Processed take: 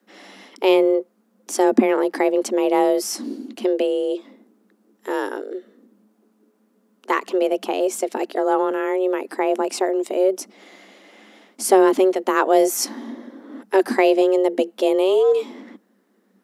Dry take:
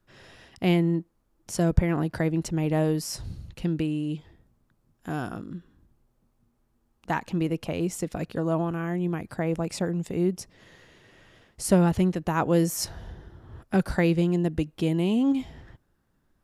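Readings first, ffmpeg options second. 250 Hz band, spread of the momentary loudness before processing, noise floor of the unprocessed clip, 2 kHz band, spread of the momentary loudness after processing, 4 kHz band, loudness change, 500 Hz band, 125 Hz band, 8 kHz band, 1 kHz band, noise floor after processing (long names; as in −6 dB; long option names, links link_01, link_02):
+3.0 dB, 13 LU, −70 dBFS, +7.0 dB, 15 LU, +7.0 dB, +6.5 dB, +12.0 dB, below −20 dB, +7.0 dB, +11.0 dB, −63 dBFS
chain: -af "acontrast=76,afreqshift=190"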